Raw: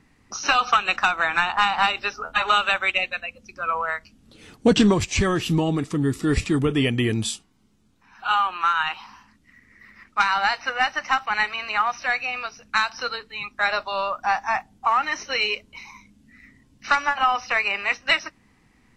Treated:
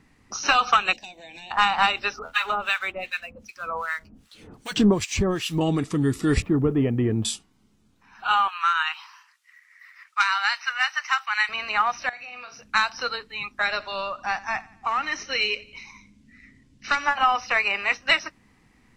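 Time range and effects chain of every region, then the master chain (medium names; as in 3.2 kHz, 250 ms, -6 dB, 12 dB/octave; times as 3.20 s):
0.93–1.51 s: bass shelf 150 Hz -9 dB + compression 2:1, threshold -35 dBFS + Butterworth band-stop 1.3 kHz, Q 0.57
2.19–5.61 s: companding laws mixed up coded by mu + harmonic tremolo 2.6 Hz, depth 100%, crossover 1.1 kHz
6.42–7.25 s: low-pass 1 kHz + word length cut 12-bit, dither triangular
8.48–11.49 s: high-pass 1.1 kHz 24 dB/octave + treble shelf 8.7 kHz +5 dB
12.09–12.61 s: high-pass 89 Hz + compression 10:1, threshold -36 dBFS + flutter echo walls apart 6.9 m, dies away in 0.3 s
13.62–17.04 s: low-pass 8.6 kHz + peaking EQ 870 Hz -7 dB 1.3 oct + feedback delay 88 ms, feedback 46%, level -21 dB
whole clip: none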